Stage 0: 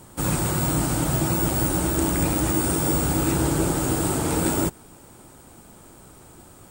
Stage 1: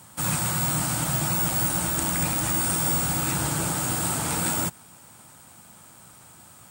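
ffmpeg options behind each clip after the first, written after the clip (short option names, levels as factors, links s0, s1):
-af "highpass=130,equalizer=f=370:t=o:w=1.4:g=-14.5,volume=1.26"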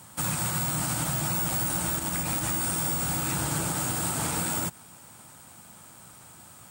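-af "alimiter=limit=0.119:level=0:latency=1:release=97"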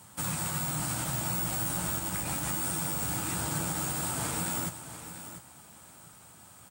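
-filter_complex "[0:a]flanger=delay=9.8:depth=8.7:regen=-41:speed=0.31:shape=triangular,asplit=2[s0][s1];[s1]aecho=0:1:694|1388:0.266|0.0479[s2];[s0][s2]amix=inputs=2:normalize=0"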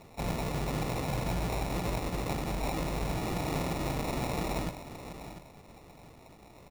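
-af "acrusher=samples=28:mix=1:aa=0.000001"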